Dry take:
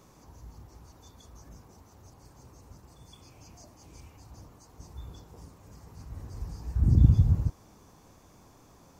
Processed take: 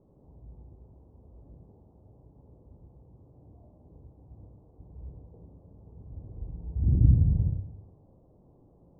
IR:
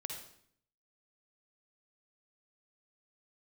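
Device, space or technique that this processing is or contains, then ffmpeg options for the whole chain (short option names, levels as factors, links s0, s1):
next room: -filter_complex "[0:a]lowpass=f=660:w=0.5412,lowpass=f=660:w=1.3066[s0];[1:a]atrim=start_sample=2205[s1];[s0][s1]afir=irnorm=-1:irlink=0"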